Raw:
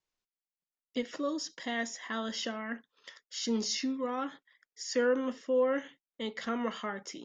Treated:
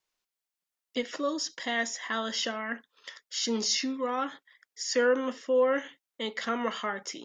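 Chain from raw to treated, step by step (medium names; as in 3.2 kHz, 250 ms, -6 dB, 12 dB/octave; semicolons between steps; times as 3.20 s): bass shelf 310 Hz -9.5 dB; trim +6 dB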